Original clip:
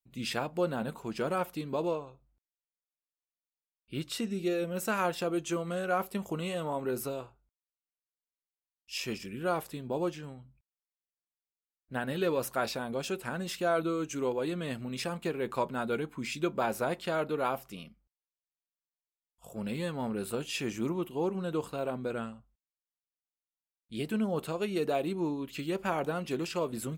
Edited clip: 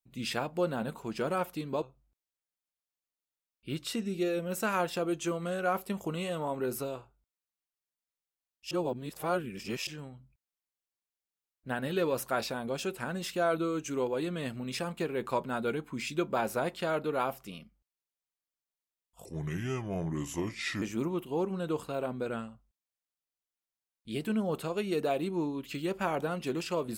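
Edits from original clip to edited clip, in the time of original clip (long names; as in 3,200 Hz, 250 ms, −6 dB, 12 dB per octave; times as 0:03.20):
0:01.82–0:02.07: remove
0:08.96–0:10.12: reverse
0:19.50–0:20.66: play speed 74%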